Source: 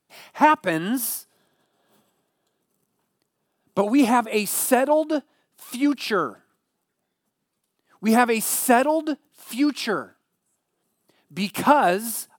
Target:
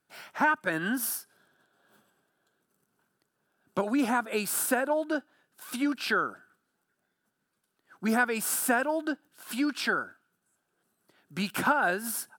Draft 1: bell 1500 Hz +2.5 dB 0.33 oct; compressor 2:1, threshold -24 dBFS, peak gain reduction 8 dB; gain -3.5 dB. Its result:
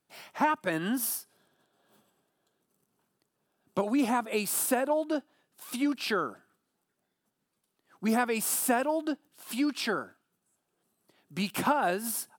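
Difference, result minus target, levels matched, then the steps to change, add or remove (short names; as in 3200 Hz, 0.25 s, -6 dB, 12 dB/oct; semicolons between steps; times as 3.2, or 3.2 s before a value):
2000 Hz band -5.0 dB
change: bell 1500 Hz +13 dB 0.33 oct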